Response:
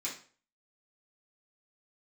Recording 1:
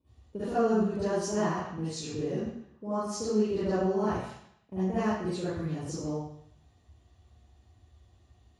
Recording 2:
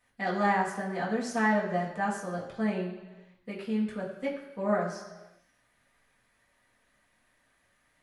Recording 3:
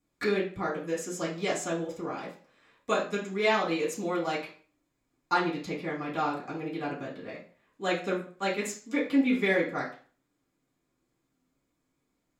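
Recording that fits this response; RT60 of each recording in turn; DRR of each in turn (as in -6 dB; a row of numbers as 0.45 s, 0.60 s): 3; 0.70 s, 1.2 s, 0.40 s; -13.0 dB, -6.0 dB, -8.5 dB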